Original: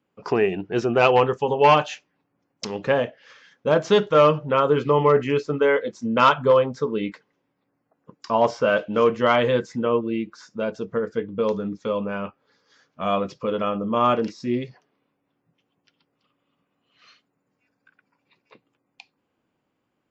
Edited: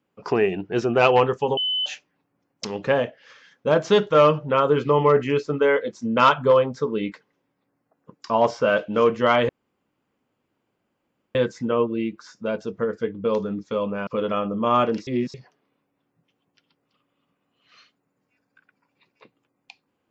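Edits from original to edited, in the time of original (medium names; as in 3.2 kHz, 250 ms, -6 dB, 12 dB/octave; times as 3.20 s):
1.57–1.86 s: bleep 3.02 kHz -21 dBFS
9.49 s: insert room tone 1.86 s
12.21–13.37 s: delete
14.37–14.64 s: reverse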